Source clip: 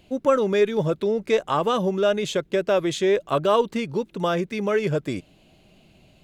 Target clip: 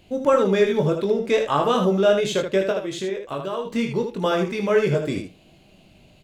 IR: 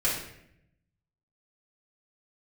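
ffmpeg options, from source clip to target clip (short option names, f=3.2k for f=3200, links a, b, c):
-filter_complex "[0:a]asplit=3[a][b][c];[a]afade=t=out:st=2.7:d=0.02[d];[b]acompressor=threshold=-29dB:ratio=4,afade=t=in:st=2.7:d=0.02,afade=t=out:st=3.65:d=0.02[e];[c]afade=t=in:st=3.65:d=0.02[f];[d][e][f]amix=inputs=3:normalize=0,flanger=delay=8.9:depth=9.7:regen=-82:speed=0.33:shape=triangular,aecho=1:1:21|78:0.562|0.473,volume=5dB"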